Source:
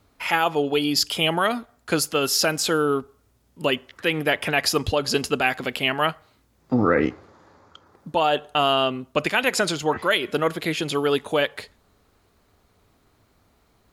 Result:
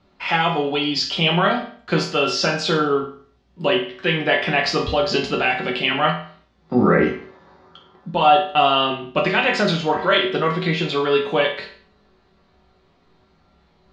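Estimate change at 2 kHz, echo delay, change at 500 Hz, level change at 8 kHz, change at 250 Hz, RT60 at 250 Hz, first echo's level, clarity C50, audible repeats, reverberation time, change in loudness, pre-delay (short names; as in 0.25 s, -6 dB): +3.0 dB, none, +3.0 dB, -9.0 dB, +3.0 dB, 0.50 s, none, 7.0 dB, none, 0.50 s, +3.0 dB, 5 ms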